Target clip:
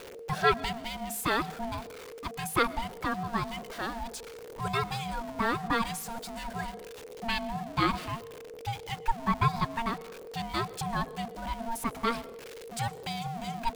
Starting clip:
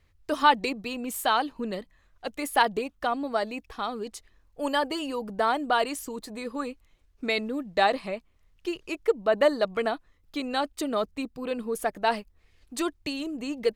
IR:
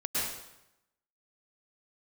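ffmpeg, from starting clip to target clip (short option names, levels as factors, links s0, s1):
-filter_complex "[0:a]aeval=exprs='val(0)+0.5*0.02*sgn(val(0))':c=same,bandreject=f=50:t=h:w=6,bandreject=f=100:t=h:w=6,bandreject=f=150:t=h:w=6,bandreject=f=200:t=h:w=6,bandreject=f=250:t=h:w=6,bandreject=f=300:t=h:w=6,asplit=2[s0][s1];[1:a]atrim=start_sample=2205[s2];[s1][s2]afir=irnorm=-1:irlink=0,volume=0.0447[s3];[s0][s3]amix=inputs=2:normalize=0,aeval=exprs='val(0)*sin(2*PI*460*n/s)':c=same,volume=0.75"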